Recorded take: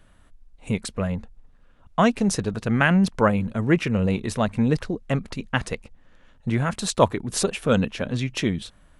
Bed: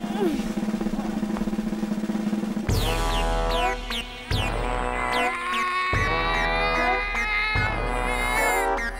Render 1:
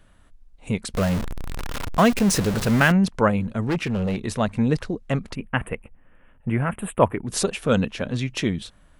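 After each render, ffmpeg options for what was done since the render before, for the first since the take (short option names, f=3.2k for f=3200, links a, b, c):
-filter_complex "[0:a]asettb=1/sr,asplit=3[a][b][c];[a]atrim=end=0.944[d];[b]atrim=start=0.94:end=2.92,asetpts=PTS-STARTPTS,afade=t=in:d=0.004:c=qsin,afade=t=out:st=1.976:d=0.004:c=qsin,aeval=exprs='val(0)+0.5*0.0794*sgn(val(0))':c=same[e];[c]atrim=start=2.916[f];[d][e]acrossfade=d=0.004:c1=hsin:c2=qsin[g];[g][f]acrossfade=d=0.004:c1=qsin:c2=hsin,asettb=1/sr,asplit=3[h][i][j];[h]atrim=end=3.674[k];[i]atrim=start=3.67:end=4.17,asetpts=PTS-STARTPTS,afade=t=in:d=0.004:c=qsin,afade=t=out:st=0.496:d=0.004:c=qsin,asoftclip=type=hard:threshold=-19.5dB[l];[j]atrim=start=4.166[m];[k][l]acrossfade=d=0.004:c1=hsin:c2=qsin[n];[n][m]acrossfade=d=0.004:c1=qsin:c2=hsin,asettb=1/sr,asplit=3[o][p][q];[o]atrim=end=5.354[r];[p]atrim=start=5.35:end=7.25,asetpts=PTS-STARTPTS,afade=t=in:d=0.004:c=qsin,afade=t=out:st=1.896:d=0.004:c=qsin,asuperstop=centerf=5200:order=8:qfactor=0.87[s];[q]atrim=start=7.246[t];[r][s]acrossfade=d=0.004:c1=hsin:c2=qsin[u];[u][t]acrossfade=d=0.004:c1=qsin:c2=hsin"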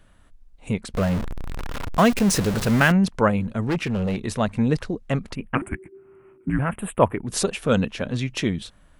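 -filter_complex "[0:a]asettb=1/sr,asplit=3[a][b][c];[a]atrim=end=0.734[d];[b]atrim=start=0.73:end=1.94,asetpts=PTS-STARTPTS,afade=t=in:d=0.004:c=qsin,afade=t=out:st=1.206:d=0.004:c=qsin,highshelf=f=3.5k:g=-7[e];[c]atrim=start=1.936[f];[d][e]acrossfade=d=0.004:c1=hsin:c2=qsin[g];[g][f]acrossfade=d=0.004:c1=qsin:c2=hsin,asettb=1/sr,asplit=3[h][i][j];[h]atrim=end=5.554[k];[i]atrim=start=5.55:end=6.59,asetpts=PTS-STARTPTS,afade=t=in:d=0.004:c=qsin,afade=t=out:st=1.036:d=0.004:c=qsin,afreqshift=-400[l];[j]atrim=start=6.586[m];[k][l]acrossfade=d=0.004:c1=hsin:c2=qsin[n];[n][m]acrossfade=d=0.004:c1=qsin:c2=hsin"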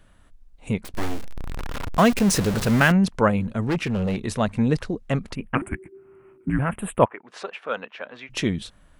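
-filter_complex "[0:a]asettb=1/sr,asplit=3[a][b][c];[a]atrim=end=0.844[d];[b]atrim=start=0.84:end=1.36,asetpts=PTS-STARTPTS,afade=t=in:d=0.004:c=qsin,afade=t=out:st=0.516:d=0.004:c=qsin,aeval=exprs='abs(val(0))':c=same[e];[c]atrim=start=1.356[f];[d][e]acrossfade=d=0.004:c1=hsin:c2=qsin[g];[g][f]acrossfade=d=0.004:c1=qsin:c2=hsin,asplit=3[h][i][j];[h]afade=t=out:st=7.04:d=0.02[k];[i]highpass=760,lowpass=2.1k,afade=t=in:st=7.04:d=0.02,afade=t=out:st=8.29:d=0.02[l];[j]afade=t=in:st=8.29:d=0.02[m];[k][l][m]amix=inputs=3:normalize=0"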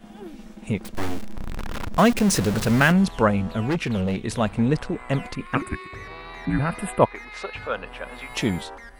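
-filter_complex "[1:a]volume=-15.5dB[a];[0:a][a]amix=inputs=2:normalize=0"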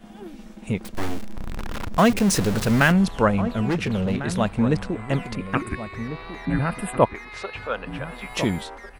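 -filter_complex "[0:a]asplit=2[a][b];[b]adelay=1399,volume=-11dB,highshelf=f=4k:g=-31.5[c];[a][c]amix=inputs=2:normalize=0"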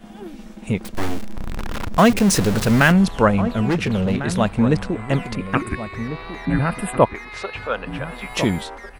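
-af "volume=3.5dB,alimiter=limit=-2dB:level=0:latency=1"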